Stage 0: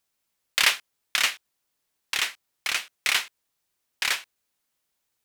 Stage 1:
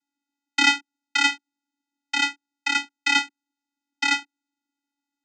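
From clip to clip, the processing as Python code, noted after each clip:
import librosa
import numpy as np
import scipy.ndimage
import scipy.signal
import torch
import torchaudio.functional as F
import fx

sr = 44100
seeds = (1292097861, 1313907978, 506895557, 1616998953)

y = fx.leveller(x, sr, passes=2)
y = fx.vocoder(y, sr, bands=16, carrier='square', carrier_hz=283.0)
y = y * librosa.db_to_amplitude(-2.0)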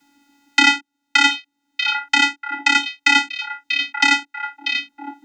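y = fx.bass_treble(x, sr, bass_db=2, treble_db=-4)
y = fx.echo_stepped(y, sr, ms=639, hz=3300.0, octaves=-1.4, feedback_pct=70, wet_db=-10.5)
y = fx.band_squash(y, sr, depth_pct=70)
y = y * librosa.db_to_amplitude(7.5)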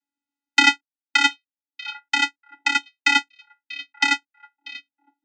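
y = fx.low_shelf(x, sr, hz=140.0, db=-8.5)
y = fx.upward_expand(y, sr, threshold_db=-33.0, expansion=2.5)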